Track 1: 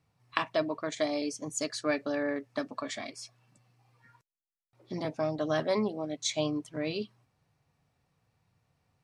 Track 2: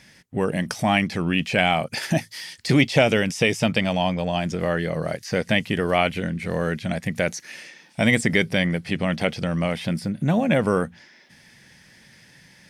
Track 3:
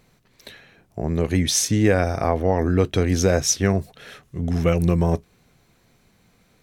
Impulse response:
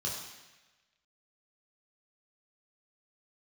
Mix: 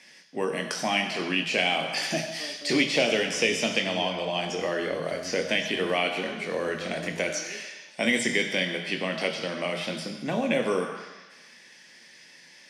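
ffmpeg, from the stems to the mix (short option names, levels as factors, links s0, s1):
-filter_complex "[0:a]adelay=550,volume=0.2,asplit=2[s0][s1];[s1]volume=0.422[s2];[1:a]aemphasis=mode=production:type=riaa,volume=0.794,asplit=2[s3][s4];[s4]volume=0.501[s5];[2:a]adelay=2150,volume=0.119[s6];[3:a]atrim=start_sample=2205[s7];[s2][s5]amix=inputs=2:normalize=0[s8];[s8][s7]afir=irnorm=-1:irlink=0[s9];[s0][s3][s6][s9]amix=inputs=4:normalize=0,acrossover=split=410|3000[s10][s11][s12];[s11]acompressor=threshold=0.0316:ratio=2[s13];[s10][s13][s12]amix=inputs=3:normalize=0,highpass=210,lowpass=4500"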